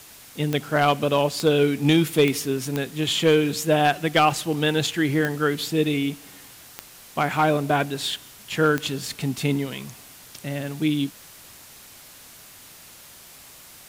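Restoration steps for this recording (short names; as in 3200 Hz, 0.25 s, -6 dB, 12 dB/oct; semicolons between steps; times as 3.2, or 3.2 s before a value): clip repair -9.5 dBFS; de-click; denoiser 21 dB, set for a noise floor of -46 dBFS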